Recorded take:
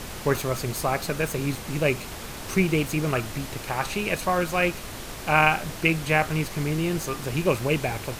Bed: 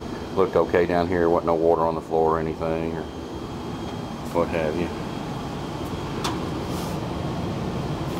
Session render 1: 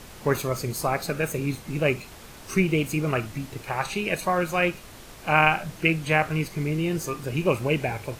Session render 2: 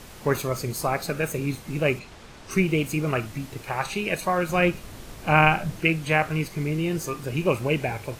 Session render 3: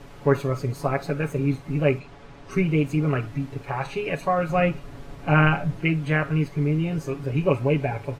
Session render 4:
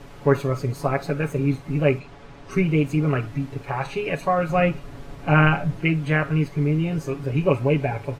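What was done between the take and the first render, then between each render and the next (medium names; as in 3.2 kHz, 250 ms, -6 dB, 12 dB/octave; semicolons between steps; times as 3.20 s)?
noise print and reduce 8 dB
1.99–2.51 s: distance through air 62 m; 4.49–5.80 s: bass shelf 370 Hz +7 dB
low-pass 1.4 kHz 6 dB/octave; comb 7.1 ms, depth 77%
trim +1.5 dB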